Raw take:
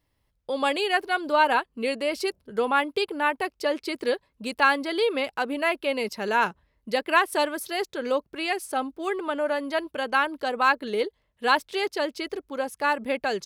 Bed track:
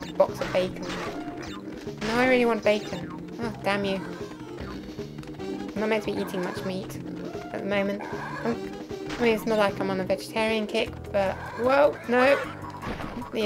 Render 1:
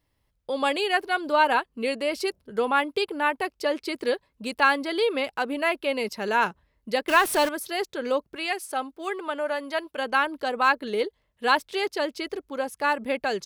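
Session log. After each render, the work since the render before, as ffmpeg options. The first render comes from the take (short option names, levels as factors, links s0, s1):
-filter_complex "[0:a]asettb=1/sr,asplit=3[s0][s1][s2];[s0]atrim=end=7.084[s3];[s1]atrim=start=7.08:end=7.49,asetpts=PTS-STARTPTS,afade=t=in:d=0.004:c=qsin,afade=t=out:st=0.406:d=0.004:c=qsin,aeval=exprs='val(0)+0.5*0.0447*sgn(val(0))':c=same[s4];[s2]atrim=start=7.486[s5];[s3][s4]acrossfade=d=0.004:c1=hsin:c2=qsin[s6];[s6][s5]acrossfade=d=0.004:c1=qsin:c2=hsin,asettb=1/sr,asplit=3[s7][s8][s9];[s7]atrim=end=8.364[s10];[s8]atrim=start=8.36:end=9.98,asetpts=PTS-STARTPTS,afade=t=in:d=0.004:c=qsin,afade=t=out:st=1.616:d=0.004:c=qsin,lowshelf=f=300:g=-10[s11];[s9]atrim=start=9.976[s12];[s10][s11]acrossfade=d=0.004:c1=hsin:c2=qsin[s13];[s13][s12]acrossfade=d=0.004:c1=qsin:c2=hsin"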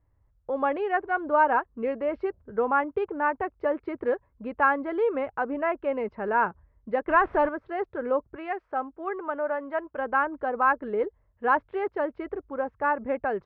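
-af "lowpass=f=1600:w=0.5412,lowpass=f=1600:w=1.3066,lowshelf=f=130:t=q:w=1.5:g=7.5"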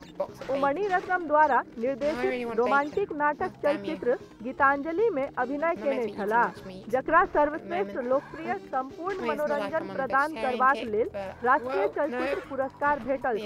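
-filter_complex "[1:a]volume=0.299[s0];[0:a][s0]amix=inputs=2:normalize=0"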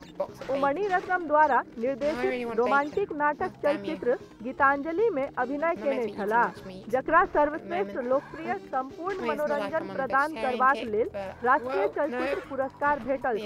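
-af anull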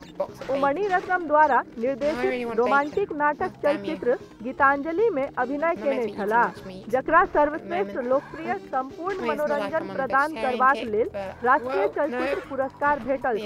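-af "volume=1.41"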